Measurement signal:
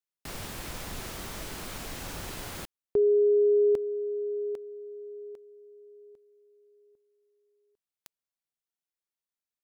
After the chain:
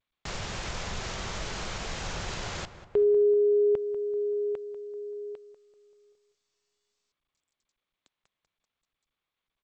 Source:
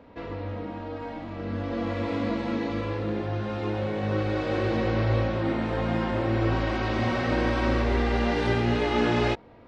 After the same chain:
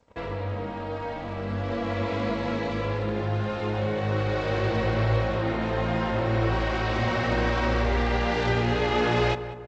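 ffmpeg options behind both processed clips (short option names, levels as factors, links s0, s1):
-filter_complex "[0:a]agate=range=0.0224:threshold=0.00501:ratio=3:release=35:detection=rms,equalizer=f=280:t=o:w=0.55:g=-9.5,asplit=2[s0][s1];[s1]acompressor=threshold=0.02:ratio=5:attack=0.14:release=377:knee=1:detection=rms,volume=1.12[s2];[s0][s2]amix=inputs=2:normalize=0,asplit=2[s3][s4];[s4]adelay=193,lowpass=f=1900:p=1,volume=0.251,asplit=2[s5][s6];[s6]adelay=193,lowpass=f=1900:p=1,volume=0.5,asplit=2[s7][s8];[s8]adelay=193,lowpass=f=1900:p=1,volume=0.5,asplit=2[s9][s10];[s10]adelay=193,lowpass=f=1900:p=1,volume=0.5,asplit=2[s11][s12];[s12]adelay=193,lowpass=f=1900:p=1,volume=0.5[s13];[s3][s5][s7][s9][s11][s13]amix=inputs=6:normalize=0" -ar 16000 -c:a g722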